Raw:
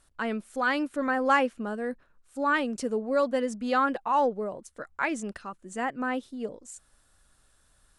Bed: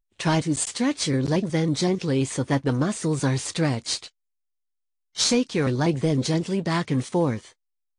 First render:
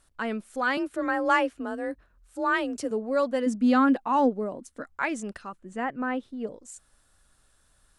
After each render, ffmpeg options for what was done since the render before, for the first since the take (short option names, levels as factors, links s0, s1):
-filter_complex "[0:a]asettb=1/sr,asplit=3[s0][s1][s2];[s0]atrim=end=0.774[s3];[s1]atrim=start=0.77:end=2.91,asetpts=PTS-STARTPTS,afade=t=in:d=0.004:c=qsin,afade=t=out:st=2.136:d=0.004:c=qsin,afreqshift=34[s4];[s2]atrim=start=2.906[s5];[s3][s4]acrossfade=d=0.004:c1=hsin:c2=qsin[s6];[s6][s5]acrossfade=d=0.004:c1=qsin:c2=hsin,asettb=1/sr,asplit=3[s7][s8][s9];[s7]atrim=end=3.464[s10];[s8]atrim=start=3.46:end=4.87,asetpts=PTS-STARTPTS,afade=t=in:d=0.004:c=qsin,afade=t=out:st=1.406:d=0.004:c=qsin,equalizer=f=260:w=3.4:g=12.5[s11];[s9]atrim=start=4.866[s12];[s10][s11]acrossfade=d=0.004:c1=hsin:c2=qsin[s13];[s13][s12]acrossfade=d=0.004:c1=qsin:c2=hsin,asettb=1/sr,asplit=3[s14][s15][s16];[s14]atrim=end=5.594[s17];[s15]atrim=start=5.59:end=6.47,asetpts=PTS-STARTPTS,afade=t=in:d=0.004:c=qsin,afade=t=out:st=0.876:d=0.004:c=qsin,bass=f=250:g=3,treble=f=4000:g=-12[s18];[s16]atrim=start=6.466[s19];[s17][s18]acrossfade=d=0.004:c1=hsin:c2=qsin[s20];[s20][s19]acrossfade=d=0.004:c1=qsin:c2=hsin"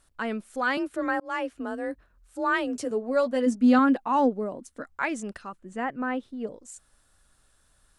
-filter_complex "[0:a]asettb=1/sr,asplit=3[s0][s1][s2];[s0]atrim=end=2.664[s3];[s1]atrim=start=2.66:end=3.79,asetpts=PTS-STARTPTS,afade=t=in:d=0.004:c=qsin,afade=t=out:st=1.126:d=0.004:c=qsin,asplit=2[s4][s5];[s5]adelay=12,volume=0.422[s6];[s4][s6]amix=inputs=2:normalize=0,atrim=end_sample=49833[s7];[s2]atrim=start=3.786[s8];[s3][s7]acrossfade=d=0.004:c1=hsin:c2=qsin[s9];[s9][s8]acrossfade=d=0.004:c1=qsin:c2=hsin,asplit=2[s10][s11];[s10]atrim=end=1.2,asetpts=PTS-STARTPTS,afade=t=out:st=1.196:d=0.004:c=hsin[s12];[s11]atrim=start=1.2,asetpts=PTS-STARTPTS,afade=t=in:d=0.4[s13];[s12][s13]concat=n=2:v=0:a=1"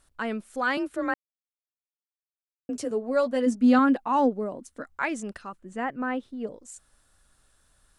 -filter_complex "[0:a]asplit=3[s0][s1][s2];[s0]atrim=end=1.14,asetpts=PTS-STARTPTS,afade=t=out:st=1.136:d=0.004:c=hsin[s3];[s1]atrim=start=1.14:end=2.69,asetpts=PTS-STARTPTS,volume=0[s4];[s2]atrim=start=2.69,asetpts=PTS-STARTPTS,afade=t=in:d=0.004:c=hsin[s5];[s3][s4][s5]concat=n=3:v=0:a=1"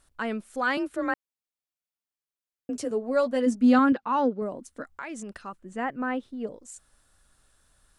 -filter_complex "[0:a]asettb=1/sr,asplit=3[s0][s1][s2];[s0]atrim=end=3.924[s3];[s1]atrim=start=3.92:end=4.42,asetpts=PTS-STARTPTS,afade=t=in:d=0.004:c=qsin,afade=t=out:st=0.496:d=0.004:c=qsin,highpass=100,equalizer=f=290:t=q:w=4:g=-4,equalizer=f=720:t=q:w=4:g=-9,equalizer=f=1400:t=q:w=4:g=6,lowpass=f=5600:w=0.5412,lowpass=f=5600:w=1.3066[s4];[s2]atrim=start=4.416[s5];[s3][s4]acrossfade=d=0.004:c1=hsin:c2=qsin[s6];[s6][s5]acrossfade=d=0.004:c1=qsin:c2=hsin,asettb=1/sr,asplit=3[s7][s8][s9];[s7]atrim=end=4.954[s10];[s8]atrim=start=4.95:end=5.44,asetpts=PTS-STARTPTS,afade=t=in:d=0.004:c=qsin,afade=t=out:st=0.486:d=0.004:c=qsin,acompressor=threshold=0.02:ratio=4:attack=3.2:release=140:knee=1:detection=peak[s11];[s9]atrim=start=5.436[s12];[s10][s11]acrossfade=d=0.004:c1=hsin:c2=qsin[s13];[s13][s12]acrossfade=d=0.004:c1=qsin:c2=hsin"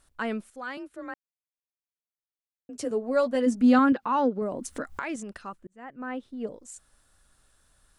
-filter_complex "[0:a]asettb=1/sr,asplit=3[s0][s1][s2];[s0]atrim=end=3.354[s3];[s1]atrim=start=3.35:end=5.16,asetpts=PTS-STARTPTS,afade=t=in:d=0.004:c=qsin,afade=t=out:st=1.806:d=0.004:c=qsin,acompressor=mode=upward:threshold=0.0631:ratio=2.5:attack=3.2:release=140:knee=2.83:detection=peak[s4];[s2]atrim=start=5.156[s5];[s3][s4]acrossfade=d=0.004:c1=hsin:c2=qsin[s6];[s6][s5]acrossfade=d=0.004:c1=qsin:c2=hsin,asplit=4[s7][s8][s9][s10];[s7]atrim=end=0.502[s11];[s8]atrim=start=0.498:end=2.792,asetpts=PTS-STARTPTS,volume=0.299[s12];[s9]atrim=start=2.788:end=5.67,asetpts=PTS-STARTPTS,afade=t=out:st=2.878:d=0.004:c=hsin[s13];[s10]atrim=start=5.67,asetpts=PTS-STARTPTS,afade=t=in:d=0.8[s14];[s11][s12]acrossfade=d=0.004:c1=hsin:c2=hsin[s15];[s13][s14]concat=n=2:v=0:a=1[s16];[s15][s16]acrossfade=d=0.004:c1=hsin:c2=hsin"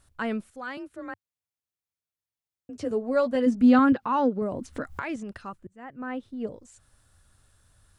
-filter_complex "[0:a]acrossover=split=4900[s0][s1];[s1]acompressor=threshold=0.00158:ratio=4:attack=1:release=60[s2];[s0][s2]amix=inputs=2:normalize=0,equalizer=f=97:w=1.4:g=13.5"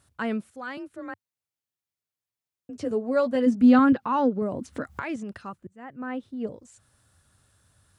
-af "highpass=110,lowshelf=f=140:g=6.5"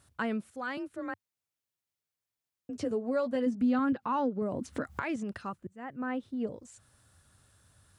-af "acompressor=threshold=0.0316:ratio=2.5"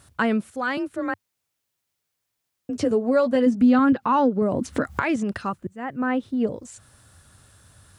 -af "volume=3.35"